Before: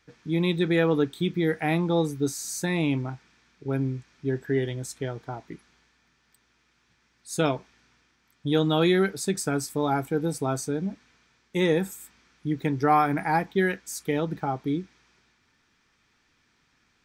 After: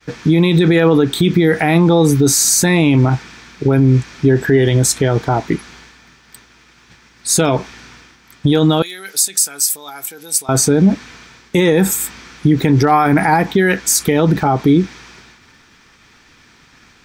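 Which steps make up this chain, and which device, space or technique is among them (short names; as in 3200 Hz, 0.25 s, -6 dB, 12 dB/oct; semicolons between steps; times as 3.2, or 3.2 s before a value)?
loud club master (compressor 2:1, threshold -26 dBFS, peak gain reduction 6 dB; hard clip -16 dBFS, distortion -42 dB; maximiser +26.5 dB); expander -36 dBFS; 8.82–10.49 differentiator; gain -2.5 dB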